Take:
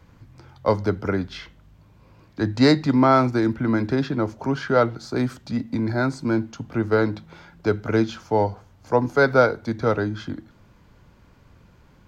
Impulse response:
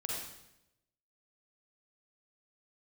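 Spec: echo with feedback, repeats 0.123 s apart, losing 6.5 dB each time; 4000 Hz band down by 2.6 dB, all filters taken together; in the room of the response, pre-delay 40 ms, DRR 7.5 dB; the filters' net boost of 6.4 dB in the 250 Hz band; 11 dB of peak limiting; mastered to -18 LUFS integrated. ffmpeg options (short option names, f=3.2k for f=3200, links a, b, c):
-filter_complex "[0:a]equalizer=f=250:t=o:g=7.5,equalizer=f=4k:t=o:g=-3,alimiter=limit=-12dB:level=0:latency=1,aecho=1:1:123|246|369|492|615|738:0.473|0.222|0.105|0.0491|0.0231|0.0109,asplit=2[a][b];[1:a]atrim=start_sample=2205,adelay=40[c];[b][c]afir=irnorm=-1:irlink=0,volume=-10dB[d];[a][d]amix=inputs=2:normalize=0,volume=3dB"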